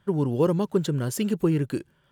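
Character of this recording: noise floor -65 dBFS; spectral tilt -7.0 dB/octave

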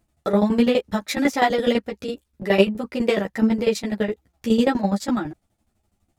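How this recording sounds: tremolo saw down 12 Hz, depth 85%; a shimmering, thickened sound

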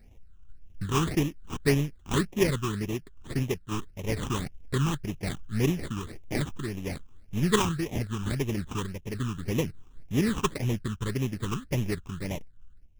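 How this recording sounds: aliases and images of a low sample rate 1.5 kHz, jitter 20%; phasing stages 8, 1.8 Hz, lowest notch 580–1400 Hz; random-step tremolo

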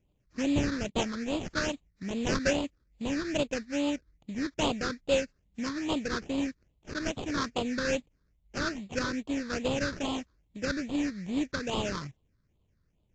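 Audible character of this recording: aliases and images of a low sample rate 2.1 kHz, jitter 20%; phasing stages 6, 2.4 Hz, lowest notch 740–1600 Hz; AAC

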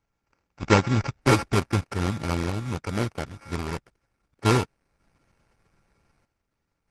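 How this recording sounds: a buzz of ramps at a fixed pitch in blocks of 32 samples; random-step tremolo 1.6 Hz, depth 80%; aliases and images of a low sample rate 3.6 kHz, jitter 0%; Opus

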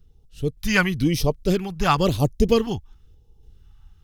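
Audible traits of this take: phasing stages 2, 0.98 Hz, lowest notch 430–1500 Hz; random-step tremolo

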